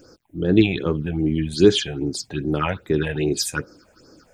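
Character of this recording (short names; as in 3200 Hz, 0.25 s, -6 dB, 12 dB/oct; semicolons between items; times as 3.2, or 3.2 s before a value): a quantiser's noise floor 12-bit, dither none; phasing stages 6, 2.5 Hz, lowest notch 310–3100 Hz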